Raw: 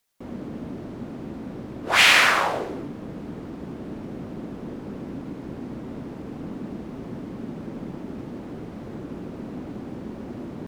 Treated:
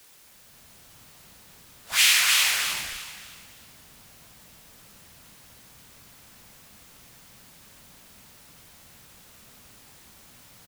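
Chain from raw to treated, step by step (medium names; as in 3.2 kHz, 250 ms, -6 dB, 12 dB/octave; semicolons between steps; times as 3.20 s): fade-in on the opening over 0.72 s; amplifier tone stack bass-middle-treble 10-0-10; frequency-shifting echo 304 ms, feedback 35%, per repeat +60 Hz, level -3 dB; in parallel at -8 dB: Schmitt trigger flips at -26 dBFS; on the sum: pre-emphasis filter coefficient 0.8; word length cut 10-bit, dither triangular; trim +6 dB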